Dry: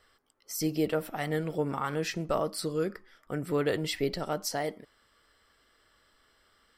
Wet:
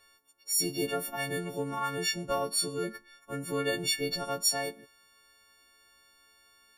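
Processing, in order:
every partial snapped to a pitch grid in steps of 4 semitones
level −3.5 dB

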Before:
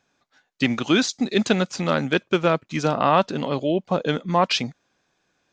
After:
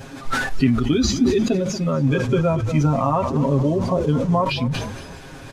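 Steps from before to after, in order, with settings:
linear delta modulator 64 kbit/s, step −25 dBFS
downward compressor 3 to 1, threshold −24 dBFS, peak gain reduction 9.5 dB
spectral tilt −2.5 dB per octave
comb filter 7.4 ms, depth 82%
noise reduction from a noise print of the clip's start 12 dB
0:01.94–0:04.42: graphic EQ with 15 bands 100 Hz +10 dB, 1,000 Hz +5 dB, 6,300 Hz +7 dB
echo with shifted repeats 233 ms, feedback 47%, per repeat −31 Hz, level −14 dB
level that may fall only so fast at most 44 dB per second

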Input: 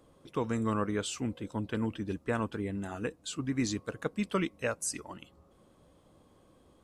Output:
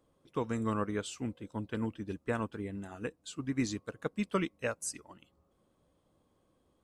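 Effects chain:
expander for the loud parts 1.5 to 1, over −46 dBFS

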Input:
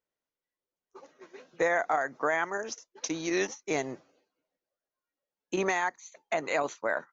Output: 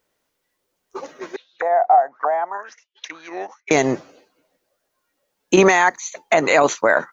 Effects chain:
0:01.36–0:03.71: envelope filter 740–4,100 Hz, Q 8.2, down, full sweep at −26 dBFS
boost into a limiter +21 dB
level −2.5 dB

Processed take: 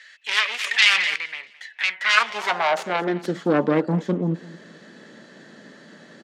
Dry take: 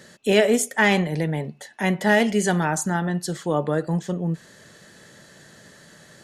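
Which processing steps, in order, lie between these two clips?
phase distortion by the signal itself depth 0.63 ms
low-pass filter 4,200 Hz 12 dB per octave
on a send: repeating echo 215 ms, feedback 33%, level −19 dB
on the sum: high-pass filter sweep 2,100 Hz → 240 Hz, 0:01.88–0:03.37
0:00.64–0:01.16: envelope flattener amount 50%
level +2 dB

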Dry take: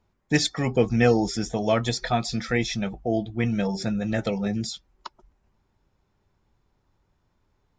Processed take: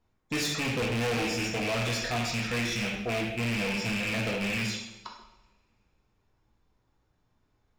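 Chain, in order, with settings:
loose part that buzzes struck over −27 dBFS, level −13 dBFS
coupled-rooms reverb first 0.82 s, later 2.4 s, from −26 dB, DRR −1.5 dB
gain into a clipping stage and back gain 21.5 dB
level −5.5 dB

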